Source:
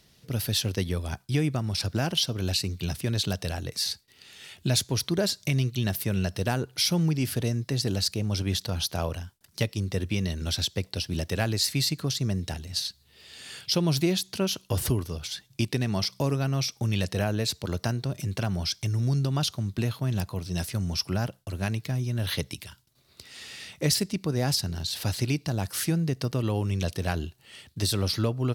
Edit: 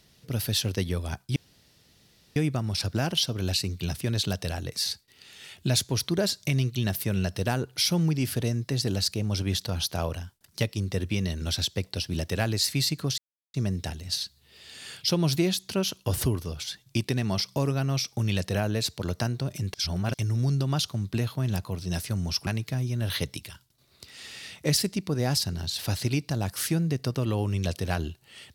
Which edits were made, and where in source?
0:01.36: splice in room tone 1.00 s
0:12.18: splice in silence 0.36 s
0:18.38–0:18.78: reverse
0:21.11–0:21.64: remove

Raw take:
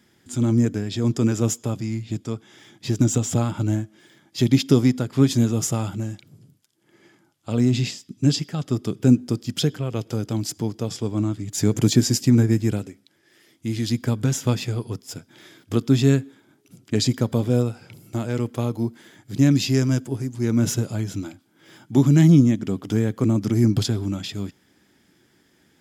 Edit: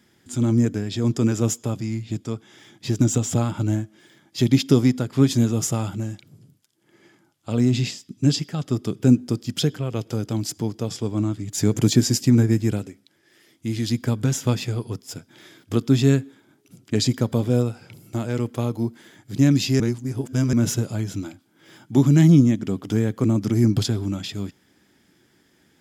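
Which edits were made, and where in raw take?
0:19.80–0:20.53: reverse

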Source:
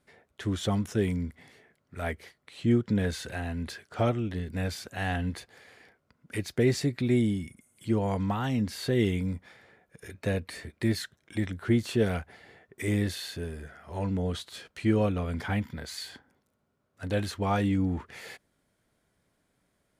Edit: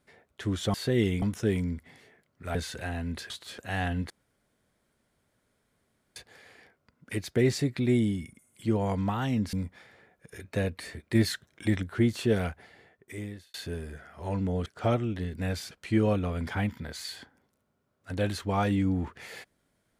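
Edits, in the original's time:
0:02.07–0:03.06: remove
0:03.81–0:04.86: swap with 0:14.36–0:14.64
0:05.38: splice in room tone 2.06 s
0:08.75–0:09.23: move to 0:00.74
0:10.85–0:11.53: clip gain +3.5 dB
0:12.20–0:13.24: fade out

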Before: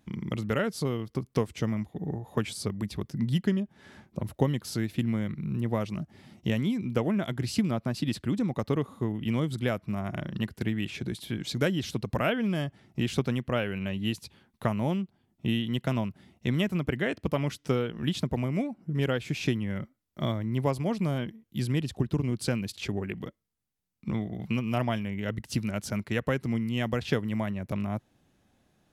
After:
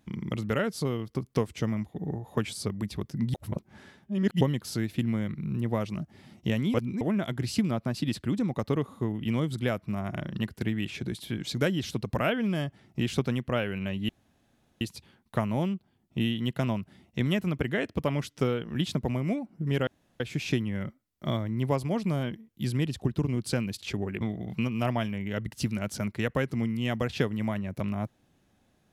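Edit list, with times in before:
0:03.34–0:04.41: reverse
0:06.74–0:07.01: reverse
0:14.09: splice in room tone 0.72 s
0:19.15: splice in room tone 0.33 s
0:23.16–0:24.13: remove

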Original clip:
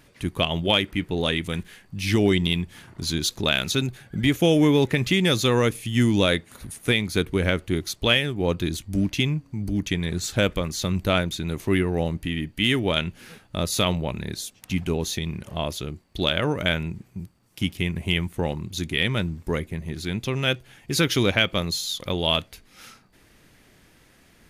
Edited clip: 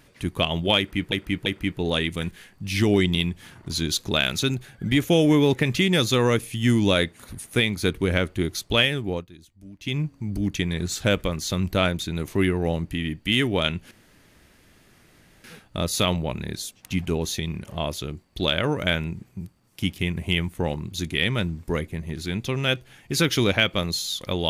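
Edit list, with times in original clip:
0:00.78–0:01.12: repeat, 3 plays
0:08.36–0:09.33: duck −21 dB, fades 0.22 s
0:13.23: splice in room tone 1.53 s

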